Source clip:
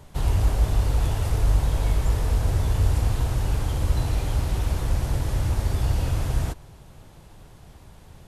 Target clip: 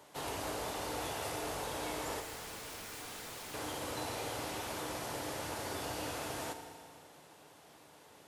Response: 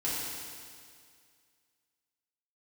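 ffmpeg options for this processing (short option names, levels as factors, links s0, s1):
-filter_complex "[0:a]highpass=370,asettb=1/sr,asplit=3[s0][s1][s2];[s0]atrim=end=2.204[s3];[s1]atrim=start=2.2:end=3.54,asetpts=PTS-STARTPTS,afade=t=in:d=0.004:c=qsin,afade=t=out:st=1.336:d=0.004:c=qsin,aeval=exprs='0.0119*(abs(mod(val(0)/0.0119+3,4)-2)-1)':c=same[s4];[s2]atrim=start=3.536[s5];[s3][s4]acrossfade=d=0.004:c1=hsin:c2=qsin[s6];[s6][s5]acrossfade=d=0.004:c1=qsin:c2=hsin,asplit=2[s7][s8];[1:a]atrim=start_sample=2205[s9];[s8][s9]afir=irnorm=-1:irlink=0,volume=0.282[s10];[s7][s10]amix=inputs=2:normalize=0,volume=0.531"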